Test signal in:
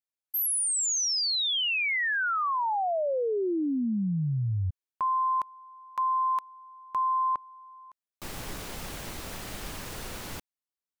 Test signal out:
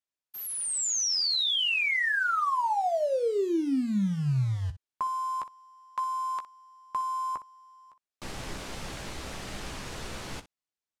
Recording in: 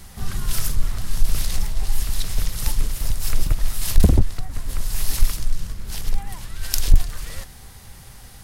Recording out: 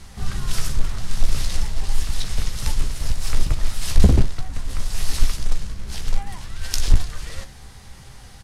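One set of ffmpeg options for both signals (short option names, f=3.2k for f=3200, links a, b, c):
-af "acrusher=bits=6:mode=log:mix=0:aa=0.000001,lowpass=7.9k,aecho=1:1:15|61:0.355|0.178"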